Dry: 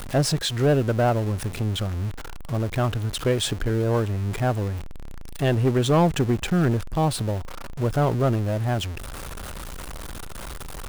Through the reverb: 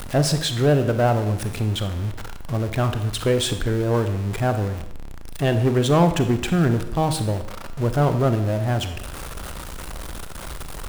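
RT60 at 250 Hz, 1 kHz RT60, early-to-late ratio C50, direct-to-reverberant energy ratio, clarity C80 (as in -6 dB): 0.70 s, 0.80 s, 10.0 dB, 8.5 dB, 13.0 dB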